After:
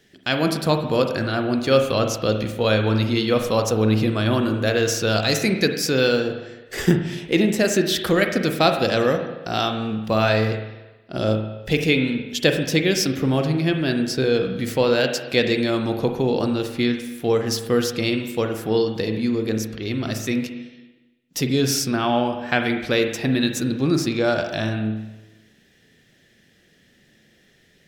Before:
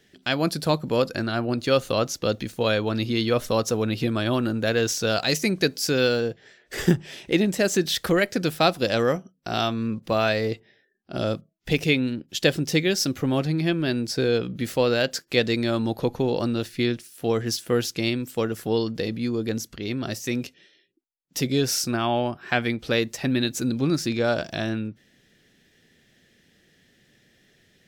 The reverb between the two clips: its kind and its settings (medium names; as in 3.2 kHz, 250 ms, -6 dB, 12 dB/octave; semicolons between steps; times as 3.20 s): spring tank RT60 1.1 s, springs 37/46 ms, chirp 60 ms, DRR 5 dB; trim +2 dB